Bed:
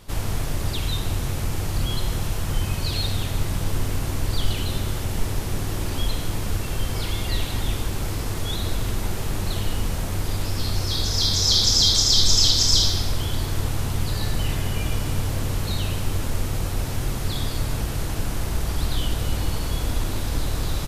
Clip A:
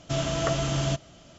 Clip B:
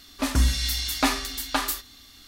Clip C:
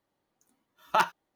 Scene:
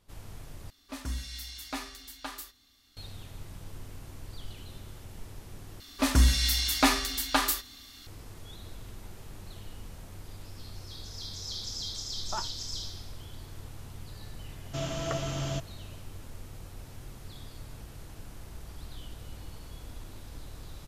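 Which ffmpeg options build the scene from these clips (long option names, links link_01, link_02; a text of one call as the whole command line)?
ffmpeg -i bed.wav -i cue0.wav -i cue1.wav -i cue2.wav -filter_complex "[2:a]asplit=2[link_01][link_02];[0:a]volume=-19.5dB[link_03];[link_02]acontrast=37[link_04];[3:a]lowpass=1300[link_05];[link_03]asplit=3[link_06][link_07][link_08];[link_06]atrim=end=0.704[link_09];[link_01]atrim=end=2.27,asetpts=PTS-STARTPTS,volume=-14.5dB[link_10];[link_07]atrim=start=2.966:end=5.804[link_11];[link_04]atrim=end=2.27,asetpts=PTS-STARTPTS,volume=-5.5dB[link_12];[link_08]atrim=start=8.066[link_13];[link_05]atrim=end=1.35,asetpts=PTS-STARTPTS,volume=-11dB,afade=type=in:duration=0.004:curve=hsin,afade=type=out:start_time=1.346:duration=0.004:curve=hsin,adelay=501858S[link_14];[1:a]atrim=end=1.38,asetpts=PTS-STARTPTS,volume=-6.5dB,afade=type=in:duration=0.004:curve=hsin,afade=type=out:start_time=1.376:duration=0.004:curve=hsin,adelay=14640[link_15];[link_09][link_10]acrossfade=duration=0.004:curve1=hsin:curve2=hsin[link_16];[link_16][link_11]acrossfade=duration=0.004:curve1=hsin:curve2=hsin[link_17];[link_17][link_12]acrossfade=duration=0.004:curve1=hsin:curve2=hsin[link_18];[link_18][link_13]acrossfade=duration=0.004:curve1=hsin:curve2=hsin[link_19];[link_19][link_14][link_15]amix=inputs=3:normalize=0" out.wav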